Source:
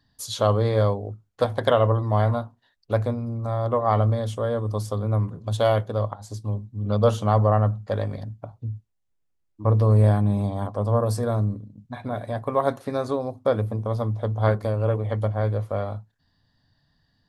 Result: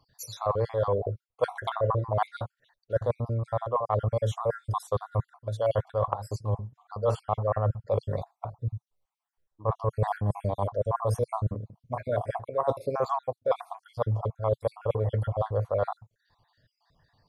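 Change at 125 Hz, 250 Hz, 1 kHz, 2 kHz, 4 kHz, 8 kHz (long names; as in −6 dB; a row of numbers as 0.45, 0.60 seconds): −8.0 dB, −12.5 dB, −3.0 dB, −6.5 dB, −9.5 dB, can't be measured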